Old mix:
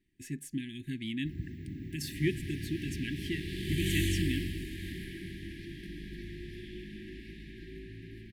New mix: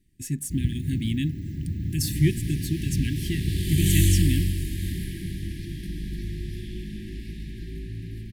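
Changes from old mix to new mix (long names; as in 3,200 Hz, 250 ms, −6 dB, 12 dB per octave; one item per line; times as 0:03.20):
first sound: entry −0.75 s
master: add bass and treble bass +14 dB, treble +14 dB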